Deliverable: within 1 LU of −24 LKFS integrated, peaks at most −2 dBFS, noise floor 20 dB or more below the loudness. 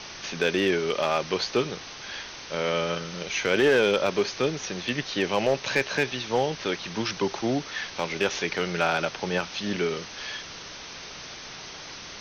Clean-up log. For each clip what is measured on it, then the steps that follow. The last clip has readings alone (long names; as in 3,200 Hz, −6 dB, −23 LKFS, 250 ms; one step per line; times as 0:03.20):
share of clipped samples 0.3%; peaks flattened at −14.0 dBFS; background noise floor −41 dBFS; target noise floor −47 dBFS; integrated loudness −27.0 LKFS; sample peak −14.0 dBFS; target loudness −24.0 LKFS
→ clipped peaks rebuilt −14 dBFS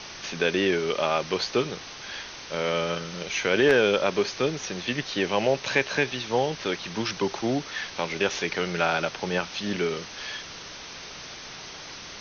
share of clipped samples 0.0%; background noise floor −41 dBFS; target noise floor −47 dBFS
→ broadband denoise 6 dB, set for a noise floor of −41 dBFS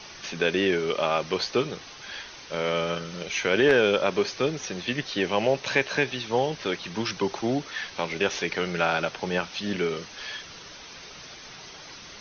background noise floor −44 dBFS; target noise floor −47 dBFS
→ broadband denoise 6 dB, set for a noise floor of −44 dBFS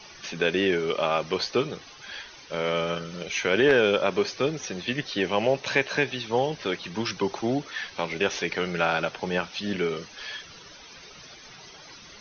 background noise floor −47 dBFS; integrated loudness −26.5 LKFS; sample peak −5.0 dBFS; target loudness −24.0 LKFS
→ level +2.5 dB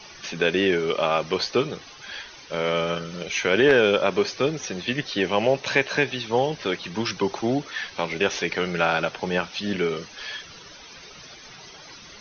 integrated loudness −24.0 LKFS; sample peak −2.5 dBFS; background noise floor −45 dBFS